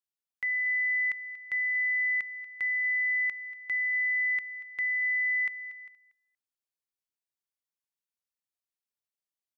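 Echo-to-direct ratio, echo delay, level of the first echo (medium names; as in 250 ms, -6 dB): -16.0 dB, 236 ms, -16.0 dB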